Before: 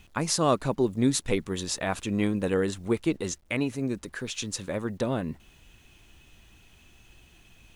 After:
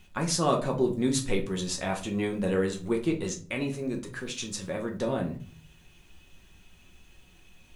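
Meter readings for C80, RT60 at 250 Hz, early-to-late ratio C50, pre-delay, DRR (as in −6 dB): 16.5 dB, 0.65 s, 11.5 dB, 5 ms, 1.5 dB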